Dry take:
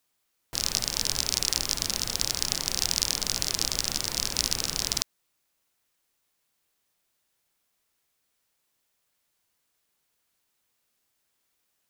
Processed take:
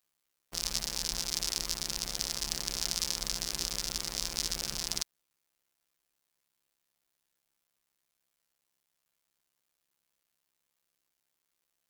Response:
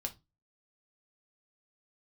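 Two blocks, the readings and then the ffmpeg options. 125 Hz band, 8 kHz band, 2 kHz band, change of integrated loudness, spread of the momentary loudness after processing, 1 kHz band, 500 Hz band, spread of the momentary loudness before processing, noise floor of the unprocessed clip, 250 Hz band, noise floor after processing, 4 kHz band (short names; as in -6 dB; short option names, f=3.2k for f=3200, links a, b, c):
-7.5 dB, -6.0 dB, -6.5 dB, -6.0 dB, 3 LU, -6.5 dB, -6.0 dB, 3 LU, -76 dBFS, -6.0 dB, -83 dBFS, -6.0 dB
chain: -af "afftfilt=real='hypot(re,im)*cos(PI*b)':imag='0':win_size=1024:overlap=0.75,aeval=exprs='val(0)*sin(2*PI*34*n/s)':c=same"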